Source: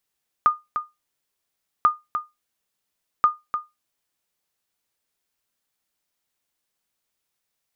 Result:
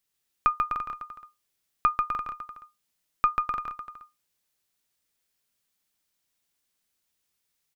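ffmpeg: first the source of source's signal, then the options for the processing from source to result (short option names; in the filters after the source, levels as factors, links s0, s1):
-f lavfi -i "aevalsrc='0.398*(sin(2*PI*1220*mod(t,1.39))*exp(-6.91*mod(t,1.39)/0.2)+0.355*sin(2*PI*1220*max(mod(t,1.39)-0.3,0))*exp(-6.91*max(mod(t,1.39)-0.3,0)/0.2))':d=4.17:s=44100"
-filter_complex "[0:a]equalizer=f=750:t=o:w=2.5:g=-5,aeval=exprs='0.282*(cos(1*acos(clip(val(0)/0.282,-1,1)))-cos(1*PI/2))+0.0398*(cos(2*acos(clip(val(0)/0.282,-1,1)))-cos(2*PI/2))':c=same,asplit=2[s0][s1];[s1]aecho=0:1:140|252|341.6|413.3|470.6:0.631|0.398|0.251|0.158|0.1[s2];[s0][s2]amix=inputs=2:normalize=0"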